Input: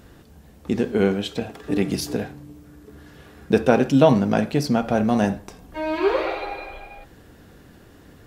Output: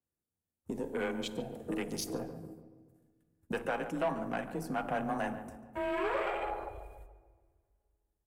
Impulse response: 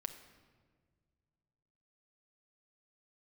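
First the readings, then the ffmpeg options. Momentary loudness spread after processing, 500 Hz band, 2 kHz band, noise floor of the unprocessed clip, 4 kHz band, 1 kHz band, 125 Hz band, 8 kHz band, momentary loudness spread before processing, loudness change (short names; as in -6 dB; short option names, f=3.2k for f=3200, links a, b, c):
15 LU, -14.5 dB, -9.0 dB, -49 dBFS, -12.5 dB, -9.5 dB, -19.5 dB, -9.0 dB, 18 LU, -15.0 dB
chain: -filter_complex "[0:a]aeval=exprs='if(lt(val(0),0),0.708*val(0),val(0))':c=same,agate=range=-25dB:threshold=-42dB:ratio=16:detection=peak,afwtdn=0.02,highshelf=f=6.3k:t=q:w=1.5:g=13,acrossover=split=690|3100[a][b][c];[a]acompressor=threshold=-32dB:ratio=6[d];[d][b][c]amix=inputs=3:normalize=0,alimiter=limit=-16dB:level=0:latency=1:release=382,afreqshift=23,asoftclip=type=tanh:threshold=-21dB,asplit=2[e][f];[f]adelay=143,lowpass=f=1.5k:p=1,volume=-10.5dB,asplit=2[g][h];[h]adelay=143,lowpass=f=1.5k:p=1,volume=0.52,asplit=2[i][j];[j]adelay=143,lowpass=f=1.5k:p=1,volume=0.52,asplit=2[k][l];[l]adelay=143,lowpass=f=1.5k:p=1,volume=0.52,asplit=2[m][n];[n]adelay=143,lowpass=f=1.5k:p=1,volume=0.52,asplit=2[o][p];[p]adelay=143,lowpass=f=1.5k:p=1,volume=0.52[q];[e][g][i][k][m][o][q]amix=inputs=7:normalize=0,asplit=2[r][s];[1:a]atrim=start_sample=2205[t];[s][t]afir=irnorm=-1:irlink=0,volume=1dB[u];[r][u]amix=inputs=2:normalize=0,adynamicequalizer=threshold=0.00447:dfrequency=4100:dqfactor=0.7:tfrequency=4100:tqfactor=0.7:attack=5:release=100:ratio=0.375:range=2:mode=cutabove:tftype=highshelf,volume=-8.5dB"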